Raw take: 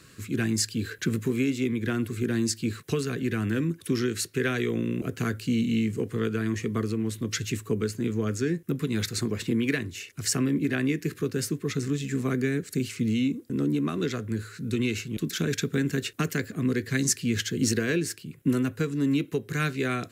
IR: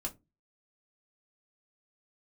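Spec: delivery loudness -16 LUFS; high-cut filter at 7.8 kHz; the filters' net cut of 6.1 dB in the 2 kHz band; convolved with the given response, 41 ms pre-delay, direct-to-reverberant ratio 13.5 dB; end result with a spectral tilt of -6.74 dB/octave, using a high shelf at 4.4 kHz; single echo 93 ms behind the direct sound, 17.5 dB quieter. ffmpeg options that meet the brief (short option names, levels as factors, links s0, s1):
-filter_complex "[0:a]lowpass=7800,equalizer=f=2000:t=o:g=-7.5,highshelf=f=4400:g=-3,aecho=1:1:93:0.133,asplit=2[s0][s1];[1:a]atrim=start_sample=2205,adelay=41[s2];[s1][s2]afir=irnorm=-1:irlink=0,volume=0.211[s3];[s0][s3]amix=inputs=2:normalize=0,volume=4.22"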